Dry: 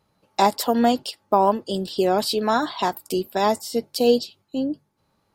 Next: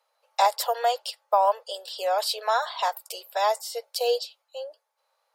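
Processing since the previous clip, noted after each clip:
Butterworth high-pass 490 Hz 72 dB per octave
level −2 dB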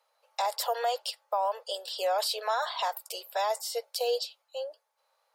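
brickwall limiter −20.5 dBFS, peak gain reduction 11 dB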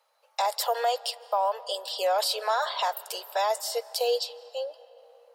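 comb and all-pass reverb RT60 4.1 s, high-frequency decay 0.5×, pre-delay 120 ms, DRR 19 dB
level +3 dB

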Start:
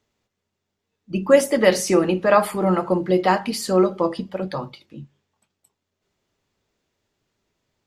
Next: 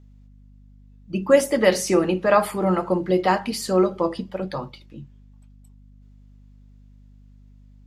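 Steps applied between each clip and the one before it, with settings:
mains hum 50 Hz, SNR 25 dB
level −1.5 dB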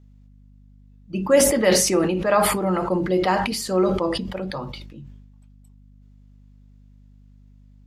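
level that may fall only so fast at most 41 dB per second
level −2 dB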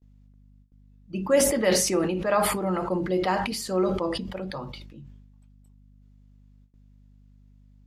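noise gate with hold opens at −44 dBFS
level −4.5 dB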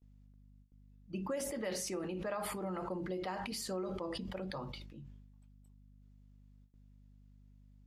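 downward compressor 6 to 1, threshold −30 dBFS, peak gain reduction 13.5 dB
level −6 dB

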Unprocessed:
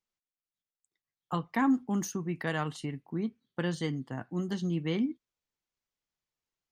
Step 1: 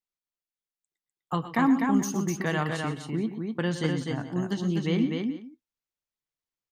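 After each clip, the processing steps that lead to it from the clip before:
noise gate −56 dBFS, range −10 dB
multi-tap delay 107/122/250/427 ms −17/−13/−4/−18.5 dB
level +3.5 dB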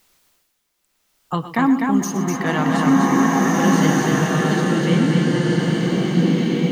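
reversed playback
upward compression, threshold −43 dBFS
reversed playback
slow-attack reverb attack 1,830 ms, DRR −4.5 dB
level +5.5 dB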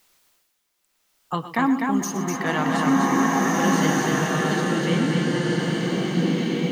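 low-shelf EQ 280 Hz −6 dB
level −1.5 dB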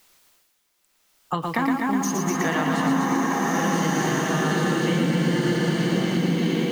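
downward compressor, threshold −24 dBFS, peak gain reduction 9 dB
feedback echo at a low word length 116 ms, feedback 35%, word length 8 bits, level −4 dB
level +3.5 dB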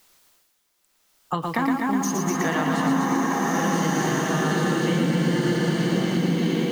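parametric band 2,400 Hz −2 dB

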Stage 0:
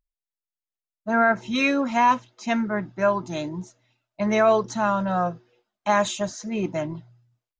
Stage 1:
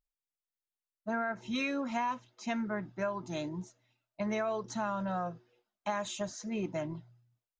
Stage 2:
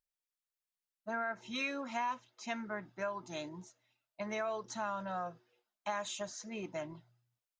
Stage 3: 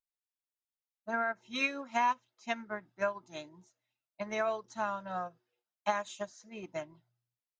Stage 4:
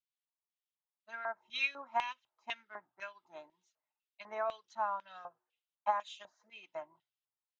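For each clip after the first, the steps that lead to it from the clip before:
downward compressor 6 to 1, threshold −23 dBFS, peak gain reduction 9.5 dB; level −7 dB
low-shelf EQ 380 Hz −10.5 dB; level −1 dB
expander for the loud parts 2.5 to 1, over −45 dBFS; level +8 dB
auto-filter band-pass square 2 Hz 940–3,100 Hz; level +2.5 dB

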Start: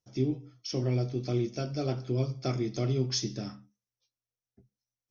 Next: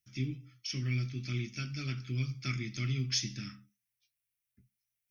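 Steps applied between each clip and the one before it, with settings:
drawn EQ curve 150 Hz 0 dB, 250 Hz −3 dB, 500 Hz −21 dB, 820 Hz −25 dB, 1,200 Hz −2 dB, 2,300 Hz +12 dB, 4,100 Hz +2 dB, 6,800 Hz +3 dB, 10,000 Hz +13 dB
level −3 dB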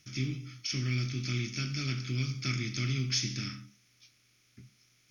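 compressor on every frequency bin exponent 0.6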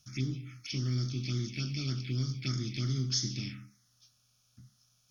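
phaser swept by the level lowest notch 340 Hz, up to 2,500 Hz, full sweep at −28.5 dBFS

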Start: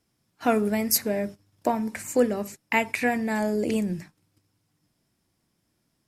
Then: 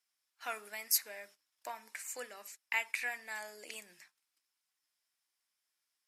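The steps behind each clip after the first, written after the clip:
high-pass filter 1,400 Hz 12 dB per octave
level −7 dB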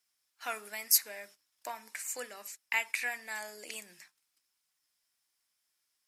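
bass and treble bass +4 dB, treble +3 dB
level +2.5 dB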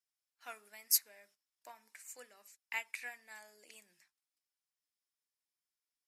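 expander for the loud parts 1.5 to 1, over −42 dBFS
level −4 dB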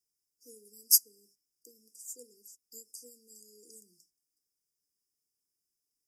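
linear-phase brick-wall band-stop 500–4,700 Hz
level +7.5 dB

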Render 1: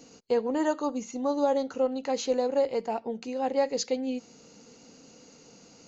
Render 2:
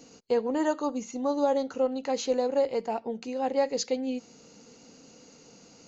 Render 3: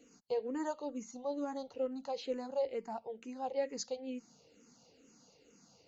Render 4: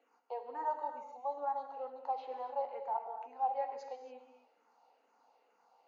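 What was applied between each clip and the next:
no processing that can be heard
frequency shifter mixed with the dry sound −2.2 Hz; level −8 dB
four-pole ladder band-pass 940 Hz, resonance 65%; reverb whose tail is shaped and stops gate 310 ms flat, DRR 5 dB; level +10.5 dB

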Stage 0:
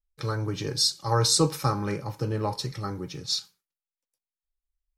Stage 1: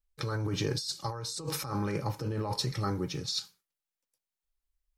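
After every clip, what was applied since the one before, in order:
compressor whose output falls as the input rises −31 dBFS, ratio −1
level −2 dB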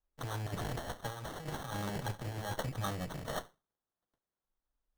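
lower of the sound and its delayed copy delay 1.4 ms
decimation without filtering 18×
level −3.5 dB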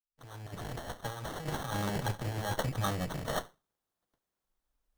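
fade in at the beginning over 1.48 s
level +4.5 dB

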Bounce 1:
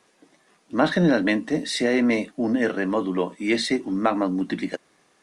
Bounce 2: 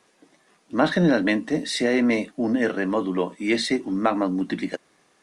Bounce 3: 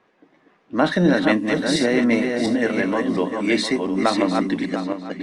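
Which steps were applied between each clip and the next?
no processing that can be heard
feedback delay that plays each chunk backwards 352 ms, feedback 45%, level −4 dB; low-pass that shuts in the quiet parts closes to 2,300 Hz, open at −18.5 dBFS; level +1.5 dB

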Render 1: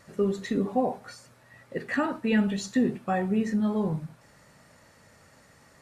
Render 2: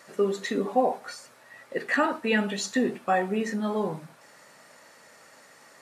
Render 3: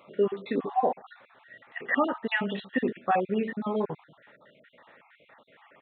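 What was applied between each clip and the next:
Bessel high-pass filter 420 Hz, order 2; level +5.5 dB
time-frequency cells dropped at random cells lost 42%; downsampling to 8,000 Hz

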